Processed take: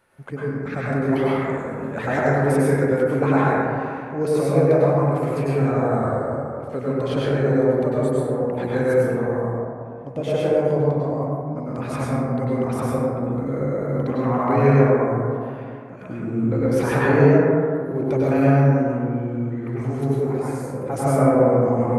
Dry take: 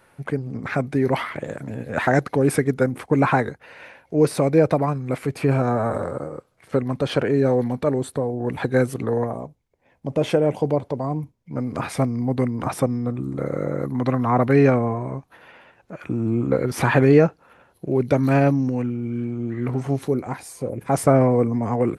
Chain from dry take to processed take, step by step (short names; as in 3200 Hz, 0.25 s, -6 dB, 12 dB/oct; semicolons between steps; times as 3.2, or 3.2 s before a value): plate-style reverb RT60 2.3 s, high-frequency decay 0.25×, pre-delay 85 ms, DRR -7.5 dB; gain -8 dB